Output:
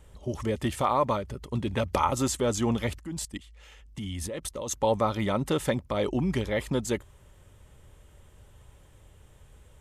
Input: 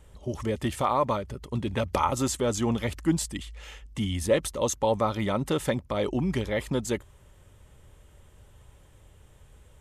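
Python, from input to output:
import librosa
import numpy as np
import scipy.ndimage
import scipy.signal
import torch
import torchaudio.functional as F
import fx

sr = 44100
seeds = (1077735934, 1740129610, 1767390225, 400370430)

y = fx.level_steps(x, sr, step_db=17, at=(2.98, 4.71))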